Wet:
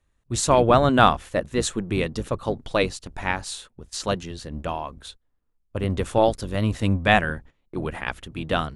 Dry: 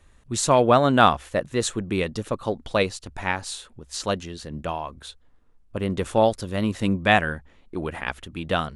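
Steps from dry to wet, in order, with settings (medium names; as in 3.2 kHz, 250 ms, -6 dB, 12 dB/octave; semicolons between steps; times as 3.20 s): octave divider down 1 oct, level -4 dB; gate -43 dBFS, range -15 dB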